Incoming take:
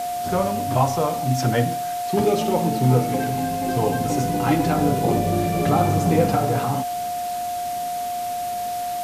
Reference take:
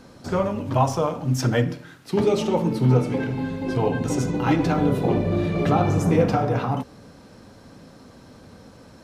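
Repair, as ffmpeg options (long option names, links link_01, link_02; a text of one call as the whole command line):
ffmpeg -i in.wav -af "bandreject=frequency=710:width=30,afwtdn=0.014" out.wav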